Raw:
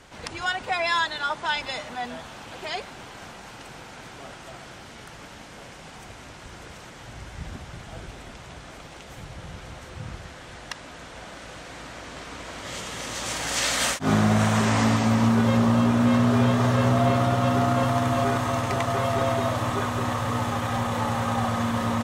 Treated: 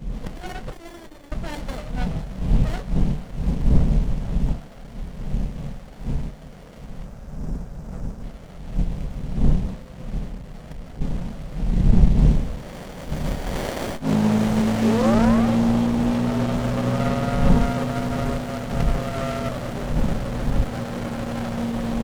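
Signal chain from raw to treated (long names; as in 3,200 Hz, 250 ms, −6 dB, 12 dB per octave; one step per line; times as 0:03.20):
wind on the microphone 93 Hz −23 dBFS
0:00.70–0:01.32: first-order pre-emphasis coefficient 0.97
0:07.04–0:08.22: time-frequency box erased 1,700–5,100 Hz
0:10.32–0:11.01: hard clipping −31 dBFS, distortion −30 dB
0:11.58–0:12.19: bass and treble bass +6 dB, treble −2 dB
0:14.82–0:15.57: sound drawn into the spectrogram rise 370–1,200 Hz −23 dBFS
phaser with its sweep stopped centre 340 Hz, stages 6
double-tracking delay 27 ms −10 dB
windowed peak hold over 33 samples
level +3.5 dB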